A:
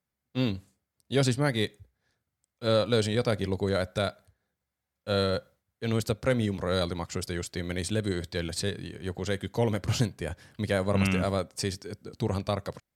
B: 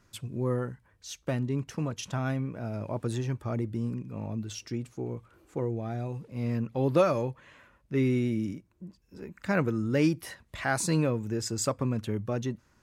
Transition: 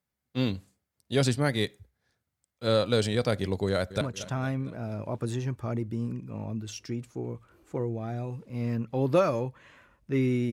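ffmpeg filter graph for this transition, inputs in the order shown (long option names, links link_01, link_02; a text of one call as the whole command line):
ffmpeg -i cue0.wav -i cue1.wav -filter_complex "[0:a]apad=whole_dur=10.52,atrim=end=10.52,atrim=end=4.012[link_01];[1:a]atrim=start=1.828:end=8.34[link_02];[link_01][link_02]acrossfade=duration=0.004:curve1=hsin:curve2=hsin,asplit=2[link_03][link_04];[link_04]afade=type=in:start_time=3.67:duration=0.01,afade=type=out:start_time=4.01:duration=0.01,aecho=0:1:230|460|690|920|1150:0.188365|0.103601|0.0569804|0.0313392|0.0172366[link_05];[link_03][link_05]amix=inputs=2:normalize=0" out.wav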